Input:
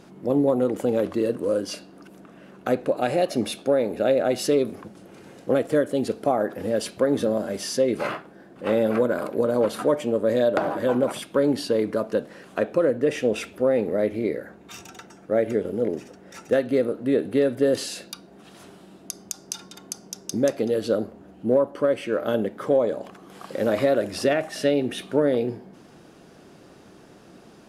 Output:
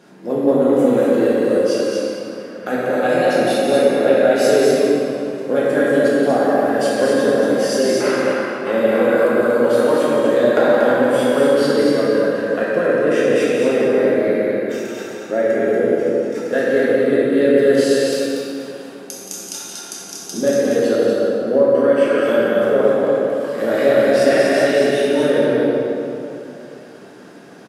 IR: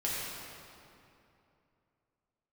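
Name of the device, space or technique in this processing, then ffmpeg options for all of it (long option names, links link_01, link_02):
stadium PA: -filter_complex "[0:a]highpass=190,equalizer=frequency=1600:width_type=o:width=0.27:gain=7,aecho=1:1:174.9|236.2:0.355|0.631[link_01];[1:a]atrim=start_sample=2205[link_02];[link_01][link_02]afir=irnorm=-1:irlink=0"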